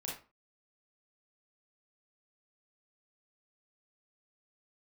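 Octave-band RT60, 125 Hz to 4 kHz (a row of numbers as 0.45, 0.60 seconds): 0.35, 0.35, 0.35, 0.35, 0.30, 0.25 seconds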